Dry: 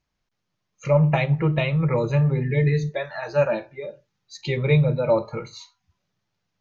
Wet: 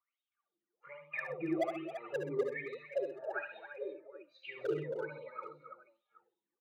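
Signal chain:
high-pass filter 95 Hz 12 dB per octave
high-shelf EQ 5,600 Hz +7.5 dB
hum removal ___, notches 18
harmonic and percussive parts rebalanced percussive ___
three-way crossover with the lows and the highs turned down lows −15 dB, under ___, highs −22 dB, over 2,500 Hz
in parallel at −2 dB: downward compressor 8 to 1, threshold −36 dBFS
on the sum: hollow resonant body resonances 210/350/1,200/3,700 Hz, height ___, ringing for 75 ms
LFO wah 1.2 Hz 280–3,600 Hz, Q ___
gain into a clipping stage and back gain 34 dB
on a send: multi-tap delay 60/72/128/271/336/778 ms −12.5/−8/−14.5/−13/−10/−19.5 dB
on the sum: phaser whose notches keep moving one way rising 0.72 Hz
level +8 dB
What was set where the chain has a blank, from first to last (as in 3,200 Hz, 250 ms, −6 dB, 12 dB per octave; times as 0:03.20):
259.7 Hz, −16 dB, 410 Hz, 12 dB, 17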